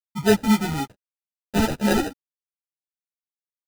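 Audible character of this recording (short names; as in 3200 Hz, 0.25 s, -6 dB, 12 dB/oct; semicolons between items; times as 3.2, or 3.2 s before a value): a quantiser's noise floor 8-bit, dither none; phasing stages 12, 3.9 Hz, lowest notch 450–1200 Hz; aliases and images of a low sample rate 1100 Hz, jitter 0%; a shimmering, thickened sound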